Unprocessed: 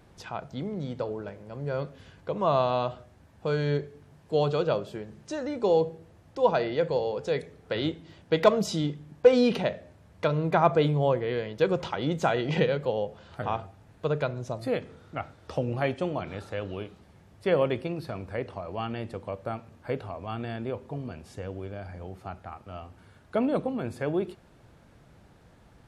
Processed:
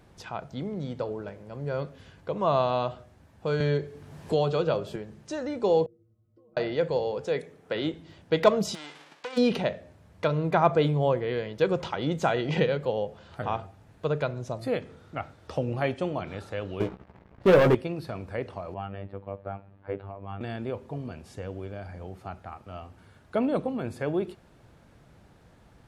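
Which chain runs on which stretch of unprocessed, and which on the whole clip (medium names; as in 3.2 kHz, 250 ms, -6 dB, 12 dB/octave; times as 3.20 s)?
3.60–4.96 s: doubling 12 ms -13 dB + three bands compressed up and down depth 70%
5.86–6.57 s: compression 10:1, threshold -34 dBFS + boxcar filter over 51 samples + inharmonic resonator 110 Hz, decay 0.41 s, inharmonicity 0.008
7.25–7.94 s: high-pass 150 Hz + peaking EQ 4.4 kHz -4 dB 0.64 oct
8.74–9.36 s: formants flattened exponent 0.3 + compression 4:1, threshold -35 dBFS + band-pass 380–3500 Hz
16.80–17.75 s: low-pass 1.6 kHz + waveshaping leveller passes 3 + doubling 16 ms -7 dB
18.74–20.41 s: distance through air 440 m + robot voice 98.5 Hz
whole clip: none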